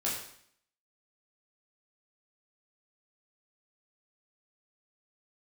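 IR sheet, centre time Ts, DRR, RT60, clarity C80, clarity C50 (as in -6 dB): 46 ms, -6.5 dB, 0.65 s, 6.5 dB, 3.5 dB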